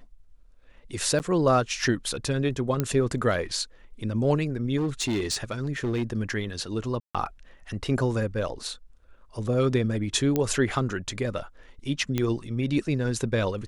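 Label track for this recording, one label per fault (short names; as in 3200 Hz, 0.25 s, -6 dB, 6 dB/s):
1.190000	1.200000	gap 9 ms
2.800000	2.800000	pop -11 dBFS
4.770000	6.030000	clipped -22.5 dBFS
7.000000	7.150000	gap 0.146 s
10.360000	10.360000	pop -11 dBFS
12.180000	12.180000	pop -12 dBFS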